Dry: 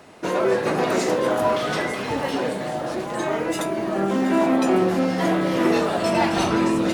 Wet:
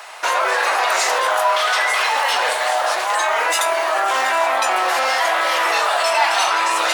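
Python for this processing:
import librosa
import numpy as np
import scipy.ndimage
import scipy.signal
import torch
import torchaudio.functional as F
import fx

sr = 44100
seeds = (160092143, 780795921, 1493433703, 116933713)

p1 = scipy.signal.sosfilt(scipy.signal.butter(4, 790.0, 'highpass', fs=sr, output='sos'), x)
p2 = fx.over_compress(p1, sr, threshold_db=-33.0, ratio=-1.0)
p3 = p1 + (p2 * 10.0 ** (1.0 / 20.0))
p4 = fx.quant_dither(p3, sr, seeds[0], bits=12, dither='triangular')
y = p4 * 10.0 ** (6.5 / 20.0)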